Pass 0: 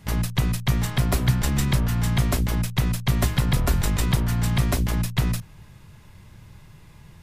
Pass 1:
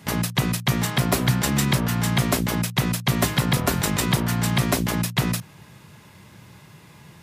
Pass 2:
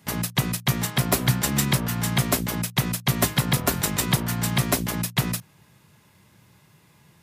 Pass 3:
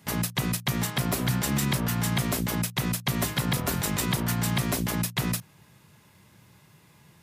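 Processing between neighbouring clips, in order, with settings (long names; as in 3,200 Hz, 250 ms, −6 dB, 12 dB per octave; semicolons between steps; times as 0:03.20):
high-pass filter 160 Hz 12 dB per octave; soft clipping −13 dBFS, distortion −26 dB; level +5.5 dB
high-shelf EQ 8,300 Hz +6.5 dB; expander for the loud parts 1.5 to 1, over −34 dBFS
brickwall limiter −17 dBFS, peak gain reduction 8.5 dB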